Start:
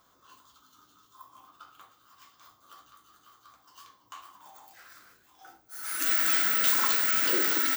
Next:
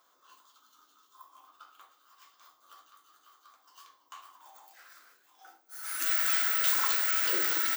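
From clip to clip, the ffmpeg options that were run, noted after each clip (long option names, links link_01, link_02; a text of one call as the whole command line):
ffmpeg -i in.wav -af "highpass=430,volume=-2.5dB" out.wav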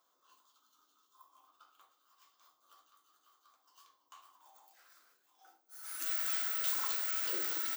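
ffmpeg -i in.wav -af "equalizer=frequency=1800:width_type=o:width=1.1:gain=-5,volume=-7dB" out.wav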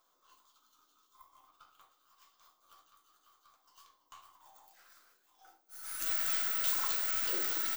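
ffmpeg -i in.wav -af "aeval=exprs='if(lt(val(0),0),0.708*val(0),val(0))':channel_layout=same,volume=3.5dB" out.wav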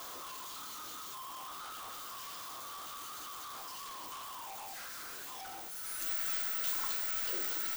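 ffmpeg -i in.wav -af "aeval=exprs='val(0)+0.5*0.02*sgn(val(0))':channel_layout=same,acrusher=bits=3:mode=log:mix=0:aa=0.000001,volume=-5.5dB" out.wav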